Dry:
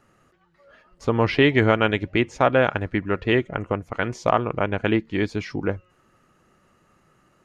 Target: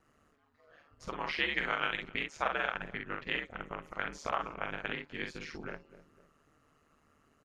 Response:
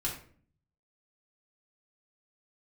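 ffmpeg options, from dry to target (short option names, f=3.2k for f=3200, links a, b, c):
-filter_complex "[0:a]aecho=1:1:254|508:0.0668|0.0234,acrossover=split=890[a][b];[a]acompressor=threshold=-33dB:ratio=10[c];[c][b]amix=inputs=2:normalize=0,asplit=2[d][e];[e]adelay=49,volume=-4dB[f];[d][f]amix=inputs=2:normalize=0,bandreject=f=235.7:t=h:w=4,bandreject=f=471.4:t=h:w=4,bandreject=f=707.1:t=h:w=4,bandreject=f=942.8:t=h:w=4,bandreject=f=1.1785k:t=h:w=4,aeval=exprs='val(0)*sin(2*PI*75*n/s)':c=same,volume=-6.5dB"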